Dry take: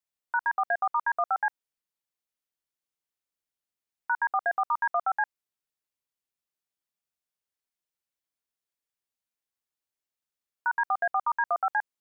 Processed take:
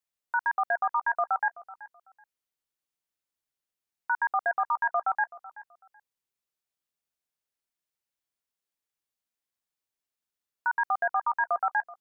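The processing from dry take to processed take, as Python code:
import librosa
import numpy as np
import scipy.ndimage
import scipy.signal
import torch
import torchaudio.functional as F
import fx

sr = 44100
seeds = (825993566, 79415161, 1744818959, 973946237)

y = fx.echo_feedback(x, sr, ms=379, feedback_pct=22, wet_db=-18.5)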